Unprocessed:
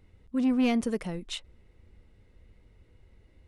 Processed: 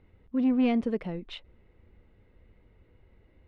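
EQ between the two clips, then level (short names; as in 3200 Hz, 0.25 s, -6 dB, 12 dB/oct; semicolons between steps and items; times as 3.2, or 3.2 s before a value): low shelf 180 Hz -6.5 dB; dynamic EQ 1300 Hz, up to -5 dB, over -48 dBFS, Q 0.98; air absorption 360 m; +3.5 dB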